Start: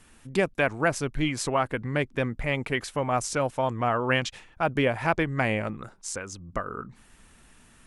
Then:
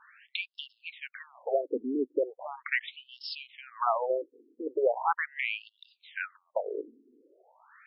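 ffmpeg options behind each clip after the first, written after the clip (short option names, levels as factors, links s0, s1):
-af "acompressor=threshold=0.0282:ratio=2,afftfilt=real='re*between(b*sr/1024,330*pow(3900/330,0.5+0.5*sin(2*PI*0.39*pts/sr))/1.41,330*pow(3900/330,0.5+0.5*sin(2*PI*0.39*pts/sr))*1.41)':imag='im*between(b*sr/1024,330*pow(3900/330,0.5+0.5*sin(2*PI*0.39*pts/sr))/1.41,330*pow(3900/330,0.5+0.5*sin(2*PI*0.39*pts/sr))*1.41)':win_size=1024:overlap=0.75,volume=2.37"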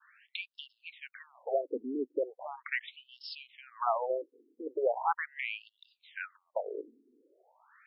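-af "adynamicequalizer=threshold=0.00631:dfrequency=760:dqfactor=1.6:tfrequency=760:tqfactor=1.6:attack=5:release=100:ratio=0.375:range=2:mode=boostabove:tftype=bell,volume=0.562"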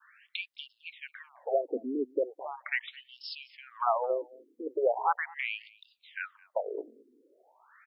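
-af "aecho=1:1:215:0.0668,volume=1.33"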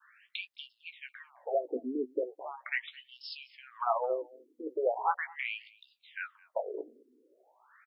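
-filter_complex "[0:a]asplit=2[s0][s1];[s1]adelay=16,volume=0.376[s2];[s0][s2]amix=inputs=2:normalize=0,volume=0.75"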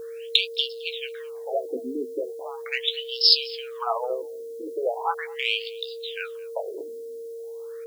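-af "aexciter=amount=10.3:drive=8.6:freq=3100,aeval=exprs='val(0)+0.0141*sin(2*PI*460*n/s)':c=same,volume=1.41"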